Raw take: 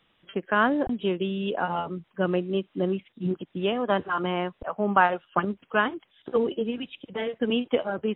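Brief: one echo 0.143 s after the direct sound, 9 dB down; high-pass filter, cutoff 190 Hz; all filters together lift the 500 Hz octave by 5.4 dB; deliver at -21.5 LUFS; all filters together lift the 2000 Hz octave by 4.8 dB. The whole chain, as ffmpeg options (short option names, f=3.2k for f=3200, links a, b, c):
-af "highpass=190,equalizer=f=500:t=o:g=6.5,equalizer=f=2k:t=o:g=6.5,aecho=1:1:143:0.355,volume=1.5dB"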